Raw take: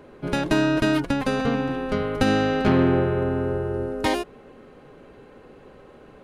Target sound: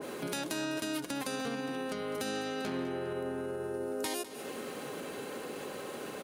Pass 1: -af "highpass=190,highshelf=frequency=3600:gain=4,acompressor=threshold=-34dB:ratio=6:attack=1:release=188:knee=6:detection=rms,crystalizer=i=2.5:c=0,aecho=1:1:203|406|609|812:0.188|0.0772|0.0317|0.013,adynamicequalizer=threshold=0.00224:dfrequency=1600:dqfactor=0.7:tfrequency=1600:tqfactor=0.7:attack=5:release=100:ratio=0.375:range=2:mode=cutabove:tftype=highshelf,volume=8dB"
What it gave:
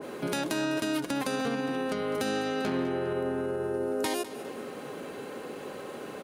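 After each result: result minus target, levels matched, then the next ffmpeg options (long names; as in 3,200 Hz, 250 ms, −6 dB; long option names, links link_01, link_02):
downward compressor: peak gain reduction −6 dB; 8,000 Hz band −4.5 dB
-af "highpass=190,highshelf=frequency=3600:gain=4,acompressor=threshold=-41dB:ratio=6:attack=1:release=188:knee=6:detection=rms,crystalizer=i=2.5:c=0,aecho=1:1:203|406|609|812:0.188|0.0772|0.0317|0.013,adynamicequalizer=threshold=0.00224:dfrequency=1600:dqfactor=0.7:tfrequency=1600:tqfactor=0.7:attack=5:release=100:ratio=0.375:range=2:mode=cutabove:tftype=highshelf,volume=8dB"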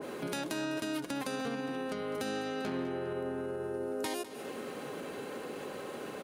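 8,000 Hz band −4.0 dB
-af "highpass=190,highshelf=frequency=3600:gain=10.5,acompressor=threshold=-41dB:ratio=6:attack=1:release=188:knee=6:detection=rms,crystalizer=i=2.5:c=0,aecho=1:1:203|406|609|812:0.188|0.0772|0.0317|0.013,adynamicequalizer=threshold=0.00224:dfrequency=1600:dqfactor=0.7:tfrequency=1600:tqfactor=0.7:attack=5:release=100:ratio=0.375:range=2:mode=cutabove:tftype=highshelf,volume=8dB"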